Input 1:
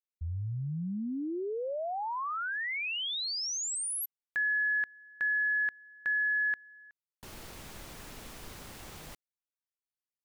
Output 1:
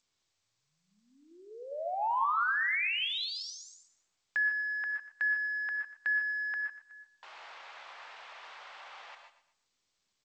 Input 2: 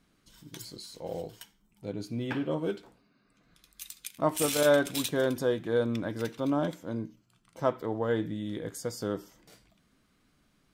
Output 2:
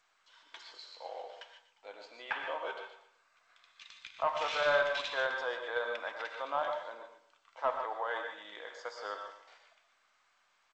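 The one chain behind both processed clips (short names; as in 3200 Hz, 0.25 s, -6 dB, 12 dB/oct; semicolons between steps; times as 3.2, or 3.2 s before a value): HPF 750 Hz 24 dB/oct; in parallel at +2 dB: level quantiser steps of 9 dB; on the sum: soft clip -18.5 dBFS; air absorption 300 m; on a send: feedback echo 0.12 s, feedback 34%, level -13 dB; on the sum: non-linear reverb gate 0.17 s rising, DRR 5 dB; G.722 64 kbps 16000 Hz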